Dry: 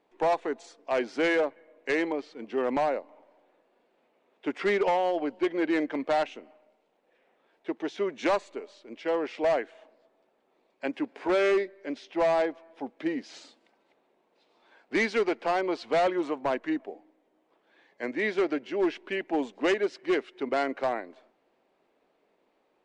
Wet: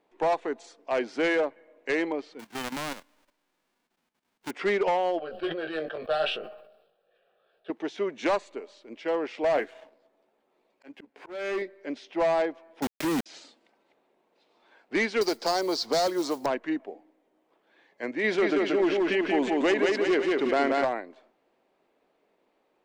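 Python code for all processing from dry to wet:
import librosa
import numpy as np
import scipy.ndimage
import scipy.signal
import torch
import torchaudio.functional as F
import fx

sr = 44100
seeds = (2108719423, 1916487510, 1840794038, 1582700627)

y = fx.envelope_flatten(x, sr, power=0.1, at=(2.39, 4.49), fade=0.02)
y = fx.lowpass(y, sr, hz=1700.0, slope=6, at=(2.39, 4.49), fade=0.02)
y = fx.level_steps(y, sr, step_db=11, at=(2.39, 4.49), fade=0.02)
y = fx.chain(y, sr, fx.fixed_phaser(hz=1400.0, stages=8),
    fx.doubler(ms=19.0, db=-6.5),
    fx.sustainer(db_per_s=67.0), at=(5.19, 7.7))
y = fx.chain(y, sr, fx.doubler(ms=14.0, db=-8.0),
    fx.leveller(passes=1),
    fx.auto_swell(attack_ms=567.0), at=(9.54, 11.62))
y = fx.chain(y, sr, fx.peak_eq(hz=140.0, db=12.0, octaves=0.61),
    fx.quant_companded(bits=2), at=(12.82, 13.26))
y = fx.chain(y, sr, fx.high_shelf_res(hz=3600.0, db=10.5, q=3.0),
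    fx.mod_noise(seeds[0], snr_db=25),
    fx.band_squash(depth_pct=70), at=(15.21, 16.46))
y = fx.chain(y, sr, fx.echo_feedback(ms=181, feedback_pct=43, wet_db=-3.5),
    fx.env_flatten(amount_pct=50), at=(18.24, 20.85))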